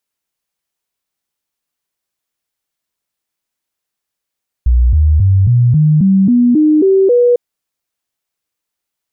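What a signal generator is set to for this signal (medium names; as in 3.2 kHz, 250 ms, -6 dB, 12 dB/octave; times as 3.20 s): stepped sine 60.7 Hz up, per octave 3, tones 10, 0.27 s, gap 0.00 s -6 dBFS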